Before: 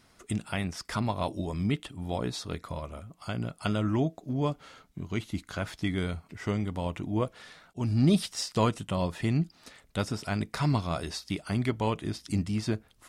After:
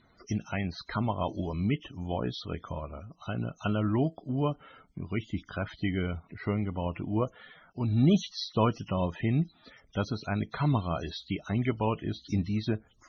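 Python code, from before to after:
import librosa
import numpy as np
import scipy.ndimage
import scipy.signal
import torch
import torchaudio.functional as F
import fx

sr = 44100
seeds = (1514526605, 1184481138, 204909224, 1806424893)

y = fx.freq_compress(x, sr, knee_hz=2600.0, ratio=1.5)
y = fx.spec_topn(y, sr, count=64)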